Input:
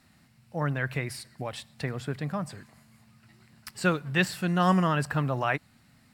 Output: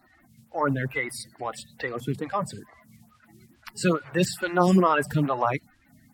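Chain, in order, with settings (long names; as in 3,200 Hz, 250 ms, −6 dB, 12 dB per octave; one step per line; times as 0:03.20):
spectral magnitudes quantised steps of 30 dB
phaser with staggered stages 2.3 Hz
level +7 dB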